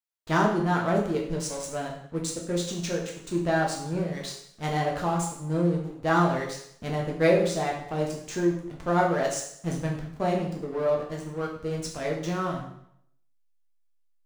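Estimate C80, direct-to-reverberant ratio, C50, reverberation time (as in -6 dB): 8.5 dB, -2.0 dB, 5.5 dB, 0.70 s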